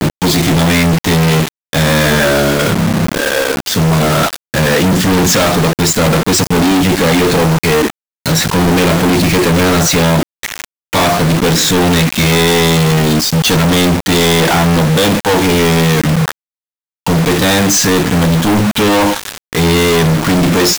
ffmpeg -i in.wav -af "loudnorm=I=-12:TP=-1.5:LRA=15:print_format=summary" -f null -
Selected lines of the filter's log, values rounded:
Input Integrated:    -11.4 LUFS
Input True Peak:      -5.0 dBTP
Input LRA:             1.7 LU
Input Threshold:     -21.5 LUFS